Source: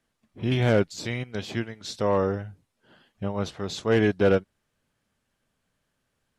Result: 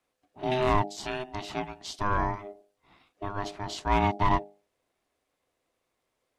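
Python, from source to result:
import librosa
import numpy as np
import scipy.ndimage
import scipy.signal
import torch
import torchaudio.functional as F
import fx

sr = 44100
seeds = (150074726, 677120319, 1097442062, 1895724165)

y = fx.hum_notches(x, sr, base_hz=50, count=7)
y = y * np.sin(2.0 * np.pi * 510.0 * np.arange(len(y)) / sr)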